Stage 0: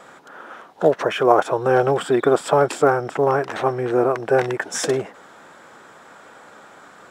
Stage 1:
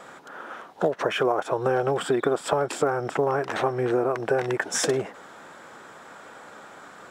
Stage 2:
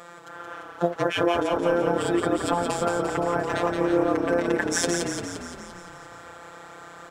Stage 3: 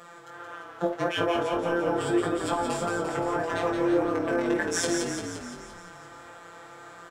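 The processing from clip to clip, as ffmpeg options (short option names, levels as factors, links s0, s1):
-af "acompressor=threshold=0.112:ratio=10"
-filter_complex "[0:a]afftfilt=real='hypot(re,im)*cos(PI*b)':imag='0':win_size=1024:overlap=0.75,asplit=9[s0][s1][s2][s3][s4][s5][s6][s7][s8];[s1]adelay=173,afreqshift=-33,volume=0.562[s9];[s2]adelay=346,afreqshift=-66,volume=0.339[s10];[s3]adelay=519,afreqshift=-99,volume=0.202[s11];[s4]adelay=692,afreqshift=-132,volume=0.122[s12];[s5]adelay=865,afreqshift=-165,volume=0.0733[s13];[s6]adelay=1038,afreqshift=-198,volume=0.0437[s14];[s7]adelay=1211,afreqshift=-231,volume=0.0263[s15];[s8]adelay=1384,afreqshift=-264,volume=0.0157[s16];[s0][s9][s10][s11][s12][s13][s14][s15][s16]amix=inputs=9:normalize=0,volume=1.41"
-filter_complex "[0:a]asplit=2[s0][s1];[s1]adelay=49,volume=0.282[s2];[s0][s2]amix=inputs=2:normalize=0,flanger=delay=18:depth=2.9:speed=1.7"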